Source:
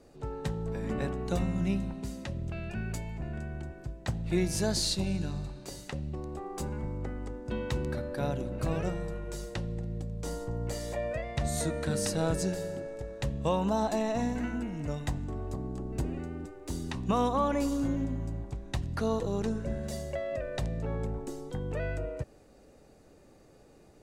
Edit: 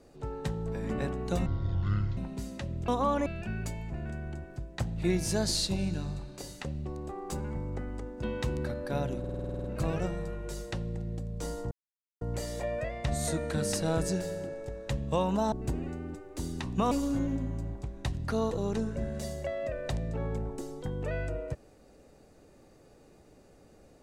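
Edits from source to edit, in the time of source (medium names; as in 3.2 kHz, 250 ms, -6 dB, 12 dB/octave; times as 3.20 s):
1.46–1.83 s: speed 52%
8.47 s: stutter 0.05 s, 10 plays
10.54 s: insert silence 0.50 s
13.85–15.83 s: delete
17.22–17.60 s: move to 2.54 s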